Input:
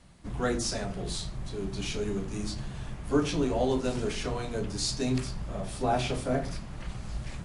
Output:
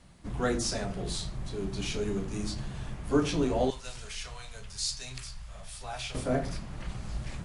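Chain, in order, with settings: 3.7–6.15 passive tone stack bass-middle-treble 10-0-10

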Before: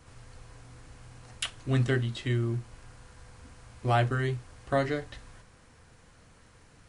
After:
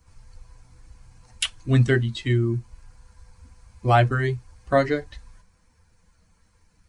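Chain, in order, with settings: per-bin expansion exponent 1.5; gain +9 dB

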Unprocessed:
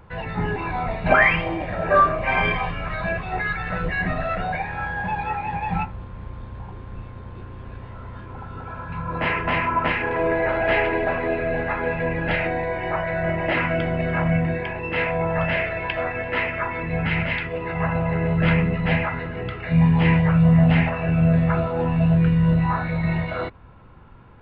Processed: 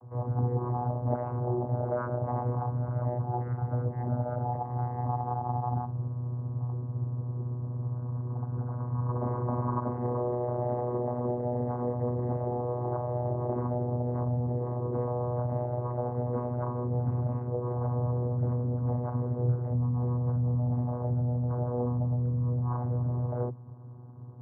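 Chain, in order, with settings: steep low-pass 1000 Hz 36 dB/oct; compressor 4:1, threshold -25 dBFS, peak gain reduction 11.5 dB; vocoder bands 16, saw 122 Hz

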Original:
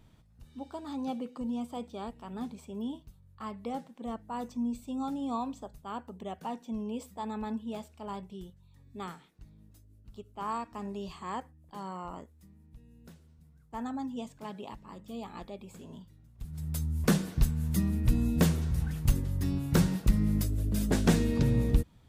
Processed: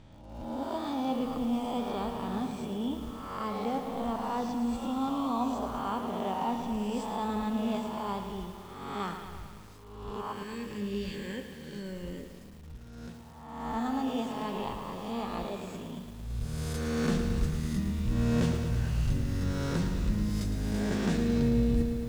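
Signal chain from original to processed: spectral swells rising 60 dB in 1.12 s; LPF 6300 Hz 12 dB/oct; reverse; compressor 6:1, threshold -31 dBFS, peak gain reduction 14.5 dB; reverse; spectral gain 10.33–12.35, 590–1500 Hz -25 dB; on a send at -11.5 dB: reverb RT60 1.6 s, pre-delay 34 ms; on the sum: lo-fi delay 0.111 s, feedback 80%, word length 9-bit, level -9 dB; gain +3.5 dB

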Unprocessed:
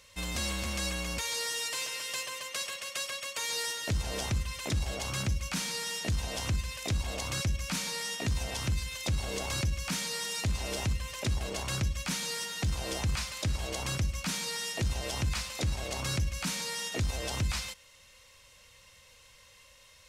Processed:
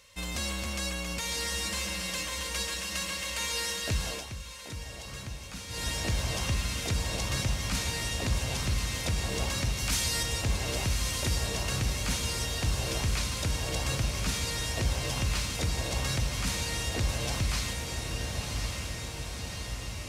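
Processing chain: 9.75–10.23 tilt +2 dB/oct; diffused feedback echo 1.145 s, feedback 68%, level -3.5 dB; 4.08–5.85 dip -10 dB, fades 0.17 s

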